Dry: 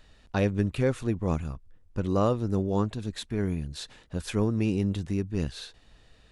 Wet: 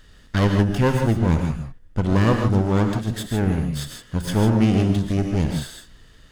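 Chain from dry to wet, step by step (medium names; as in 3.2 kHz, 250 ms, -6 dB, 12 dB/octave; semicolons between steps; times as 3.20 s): comb filter that takes the minimum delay 0.62 ms; gated-style reverb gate 180 ms rising, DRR 4 dB; trim +7 dB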